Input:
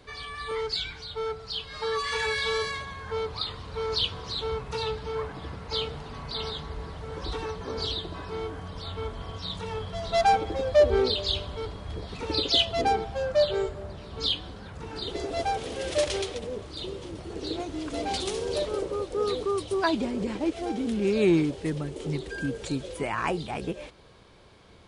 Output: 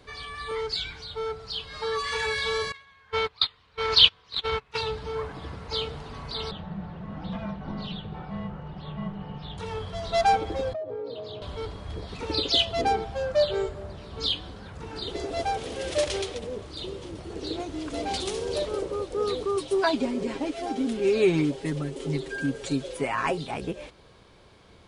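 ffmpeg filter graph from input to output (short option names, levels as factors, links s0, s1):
-filter_complex "[0:a]asettb=1/sr,asplit=3[s0][s1][s2];[s0]atrim=end=2.724[s3];[s1]atrim=start=2.72:end=4.81,asetpts=PTS-STARTPTS,afade=t=in:d=0.004:c=qsin,afade=t=out:st=2.086:d=0.004:c=qsin,agate=range=0.0562:threshold=0.0282:ratio=16:release=100:detection=peak,equalizer=f=2400:t=o:w=2.5:g=13.5[s4];[s2]atrim=start=4.806[s5];[s3][s4]acrossfade=d=0.004:c1=hsin:c2=qsin[s6];[s6][s5]acrossfade=d=0.004:c1=qsin:c2=hsin,asettb=1/sr,asplit=3[s7][s8][s9];[s7]atrim=end=6.514[s10];[s8]atrim=start=6.51:end=9.58,asetpts=PTS-STARTPTS,afade=t=in:d=0.004:c=qsin,afade=t=out:st=3.066:d=0.004:c=qsin,lowpass=2300,afreqshift=-240[s11];[s9]atrim=start=9.576[s12];[s10][s11]acrossfade=d=0.004:c1=hsin:c2=qsin[s13];[s13][s12]acrossfade=d=0.004:c1=qsin:c2=hsin,asettb=1/sr,asplit=3[s14][s15][s16];[s14]atrim=end=10.734[s17];[s15]atrim=start=10.73:end=11.42,asetpts=PTS-STARTPTS,afade=t=in:d=0.004:c=qsin,afade=t=out:st=0.686:d=0.004:c=qsin,bandpass=f=390:t=q:w=0.79,acompressor=threshold=0.0282:ratio=8:attack=3.2:release=140:knee=1:detection=peak,afreqshift=35[s18];[s16]atrim=start=11.416[s19];[s17][s18]acrossfade=d=0.004:c1=hsin:c2=qsin[s20];[s20][s19]acrossfade=d=0.004:c1=qsin:c2=hsin,asettb=1/sr,asplit=3[s21][s22][s23];[s21]atrim=end=19.564[s24];[s22]atrim=start=19.56:end=23.55,asetpts=PTS-STARTPTS,afade=t=in:d=0.004:c=qsin,afade=t=out:st=3.986:d=0.004:c=qsin,equalizer=f=91:t=o:w=0.68:g=-12.5,aecho=1:1:7.4:0.68,atrim=end_sample=175959[s25];[s23]atrim=start=23.546[s26];[s24][s25]acrossfade=d=0.004:c1=hsin:c2=qsin[s27];[s27][s26]acrossfade=d=0.004:c1=qsin:c2=hsin"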